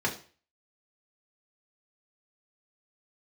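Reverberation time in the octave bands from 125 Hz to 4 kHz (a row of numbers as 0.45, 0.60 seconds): 0.45, 0.35, 0.40, 0.40, 0.40, 0.40 seconds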